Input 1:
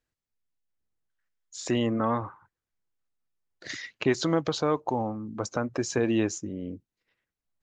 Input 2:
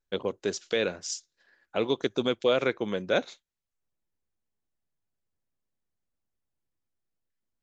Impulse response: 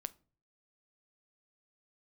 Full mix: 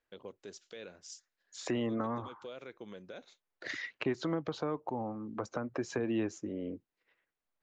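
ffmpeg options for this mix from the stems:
-filter_complex "[0:a]bass=f=250:g=-13,treble=f=4000:g=-13,acrossover=split=250[s0][s1];[s1]acompressor=threshold=0.0112:ratio=6[s2];[s0][s2]amix=inputs=2:normalize=0,volume=1.41,asplit=2[s3][s4];[1:a]alimiter=limit=0.0891:level=0:latency=1:release=88,volume=0.188[s5];[s4]apad=whole_len=336233[s6];[s5][s6]sidechaincompress=threshold=0.0141:ratio=8:attack=16:release=406[s7];[s3][s7]amix=inputs=2:normalize=0"

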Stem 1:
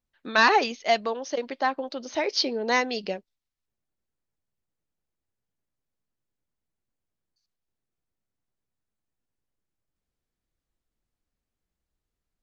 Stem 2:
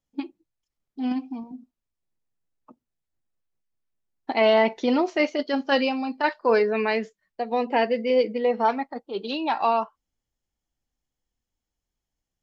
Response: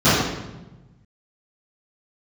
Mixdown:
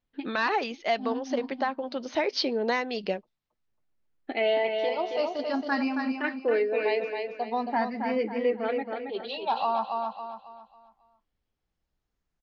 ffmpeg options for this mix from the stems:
-filter_complex "[0:a]lowpass=3900,volume=1.33[s0];[1:a]lowpass=4700,asplit=2[s1][s2];[s2]afreqshift=0.46[s3];[s1][s3]amix=inputs=2:normalize=1,volume=0.841,asplit=2[s4][s5];[s5]volume=0.531,aecho=0:1:273|546|819|1092|1365:1|0.36|0.13|0.0467|0.0168[s6];[s0][s4][s6]amix=inputs=3:normalize=0,alimiter=limit=0.15:level=0:latency=1:release=361"

